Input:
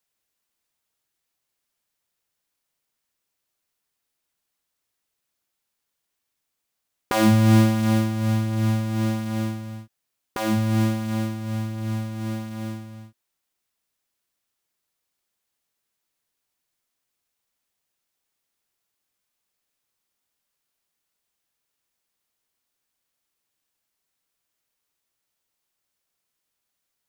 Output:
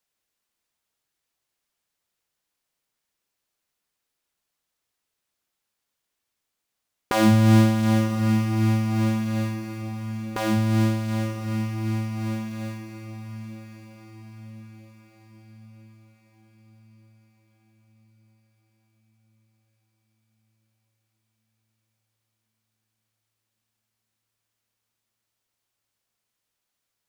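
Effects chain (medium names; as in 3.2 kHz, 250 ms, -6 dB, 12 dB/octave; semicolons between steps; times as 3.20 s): treble shelf 9.6 kHz -4.5 dB; on a send: echo that smears into a reverb 1042 ms, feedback 51%, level -11.5 dB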